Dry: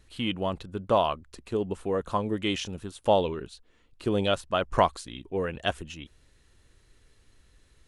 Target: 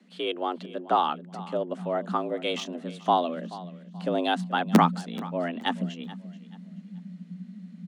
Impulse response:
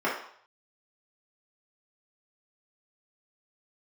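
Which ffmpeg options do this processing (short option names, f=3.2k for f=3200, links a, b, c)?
-filter_complex "[0:a]asubboost=boost=9.5:cutoff=58,acrossover=split=370|650|3200[a][b][c][d];[a]aeval=exprs='(mod(3.55*val(0)+1,2)-1)/3.55':c=same[e];[d]adynamicsmooth=sensitivity=7.5:basefreq=5.8k[f];[e][b][c][f]amix=inputs=4:normalize=0,afreqshift=170,aecho=1:1:431|862|1293:0.126|0.0365|0.0106"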